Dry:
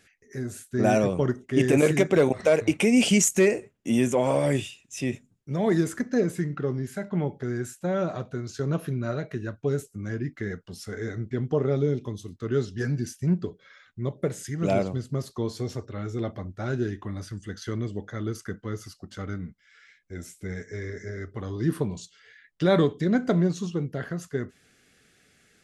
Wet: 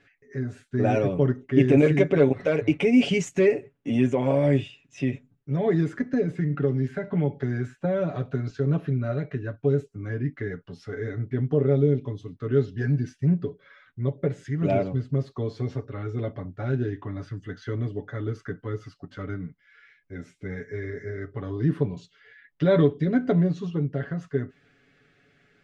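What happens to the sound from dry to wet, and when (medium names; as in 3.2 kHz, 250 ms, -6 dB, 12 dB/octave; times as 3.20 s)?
6.13–8.50 s: three bands compressed up and down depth 70%
whole clip: comb 7.1 ms, depth 71%; dynamic bell 1.1 kHz, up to -6 dB, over -40 dBFS, Q 1.1; low-pass 2.6 kHz 12 dB/octave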